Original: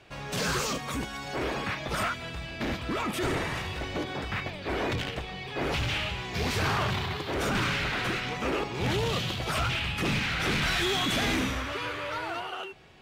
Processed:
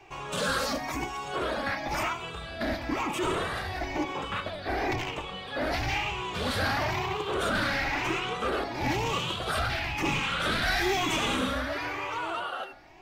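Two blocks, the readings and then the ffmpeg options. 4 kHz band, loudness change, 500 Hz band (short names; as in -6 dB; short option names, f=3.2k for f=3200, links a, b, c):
-1.0 dB, 0.0 dB, +1.0 dB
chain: -filter_complex "[0:a]afftfilt=real='re*pow(10,9/40*sin(2*PI*(0.72*log(max(b,1)*sr/1024/100)/log(2)-(1)*(pts-256)/sr)))':imag='im*pow(10,9/40*sin(2*PI*(0.72*log(max(b,1)*sr/1024/100)/log(2)-(1)*(pts-256)/sr)))':win_size=1024:overlap=0.75,bandreject=f=68.2:t=h:w=4,bandreject=f=136.4:t=h:w=4,bandreject=f=204.6:t=h:w=4,bandreject=f=272.8:t=h:w=4,bandreject=f=341:t=h:w=4,bandreject=f=409.2:t=h:w=4,bandreject=f=477.4:t=h:w=4,bandreject=f=545.6:t=h:w=4,bandreject=f=613.8:t=h:w=4,bandreject=f=682:t=h:w=4,bandreject=f=750.2:t=h:w=4,bandreject=f=818.4:t=h:w=4,bandreject=f=886.6:t=h:w=4,bandreject=f=954.8:t=h:w=4,bandreject=f=1.023k:t=h:w=4,bandreject=f=1.0912k:t=h:w=4,bandreject=f=1.1594k:t=h:w=4,bandreject=f=1.2276k:t=h:w=4,bandreject=f=1.2958k:t=h:w=4,bandreject=f=1.364k:t=h:w=4,bandreject=f=1.4322k:t=h:w=4,flanger=delay=2.5:depth=1.2:regen=42:speed=0.83:shape=sinusoidal,acrossover=split=790|890[a][b][c];[b]aeval=exprs='0.0168*sin(PI/2*3.16*val(0)/0.0168)':c=same[d];[a][d][c]amix=inputs=3:normalize=0,volume=2dB"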